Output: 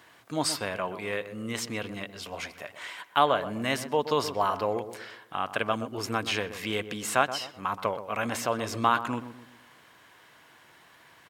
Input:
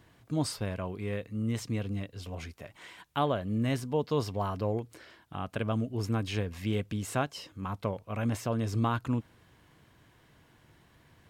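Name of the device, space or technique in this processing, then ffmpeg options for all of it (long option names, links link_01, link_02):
filter by subtraction: -filter_complex "[0:a]asplit=2[link_01][link_02];[link_02]adelay=125,lowpass=frequency=1000:poles=1,volume=-10dB,asplit=2[link_03][link_04];[link_04]adelay=125,lowpass=frequency=1000:poles=1,volume=0.44,asplit=2[link_05][link_06];[link_06]adelay=125,lowpass=frequency=1000:poles=1,volume=0.44,asplit=2[link_07][link_08];[link_08]adelay=125,lowpass=frequency=1000:poles=1,volume=0.44,asplit=2[link_09][link_10];[link_10]adelay=125,lowpass=frequency=1000:poles=1,volume=0.44[link_11];[link_01][link_03][link_05][link_07][link_09][link_11]amix=inputs=6:normalize=0,asplit=2[link_12][link_13];[link_13]lowpass=1200,volume=-1[link_14];[link_12][link_14]amix=inputs=2:normalize=0,volume=8dB"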